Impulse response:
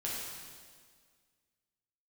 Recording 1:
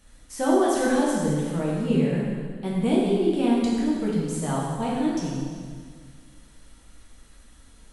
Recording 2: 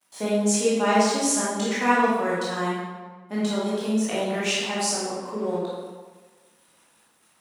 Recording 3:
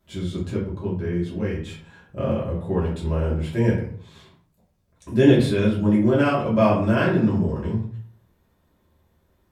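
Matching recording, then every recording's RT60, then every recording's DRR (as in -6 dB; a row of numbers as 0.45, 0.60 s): 1; 1.8, 1.4, 0.55 s; -6.0, -8.5, -7.5 dB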